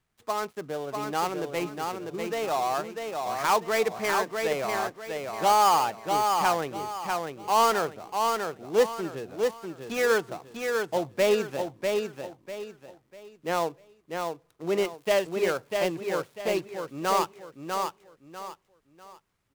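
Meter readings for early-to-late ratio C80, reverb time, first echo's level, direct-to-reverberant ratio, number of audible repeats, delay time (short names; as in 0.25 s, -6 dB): none, none, -4.5 dB, none, 3, 0.646 s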